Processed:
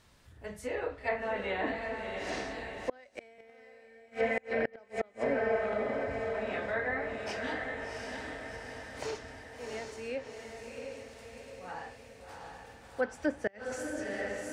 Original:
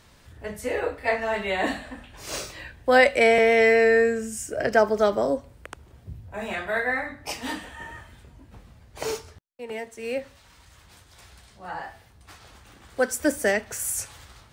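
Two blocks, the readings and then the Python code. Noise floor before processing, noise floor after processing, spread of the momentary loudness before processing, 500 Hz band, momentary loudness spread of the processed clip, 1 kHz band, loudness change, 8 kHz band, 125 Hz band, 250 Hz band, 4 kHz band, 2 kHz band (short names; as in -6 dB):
-55 dBFS, -58 dBFS, 22 LU, -11.0 dB, 16 LU, -10.5 dB, -12.0 dB, -17.0 dB, -6.5 dB, -8.5 dB, -11.5 dB, -11.0 dB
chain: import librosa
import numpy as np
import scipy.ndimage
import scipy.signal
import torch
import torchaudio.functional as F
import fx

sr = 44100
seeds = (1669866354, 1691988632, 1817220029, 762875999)

y = fx.echo_diffused(x, sr, ms=716, feedback_pct=58, wet_db=-4)
y = fx.gate_flip(y, sr, shuts_db=-10.0, range_db=-31)
y = fx.env_lowpass_down(y, sr, base_hz=2600.0, full_db=-20.5)
y = y * 10.0 ** (-8.0 / 20.0)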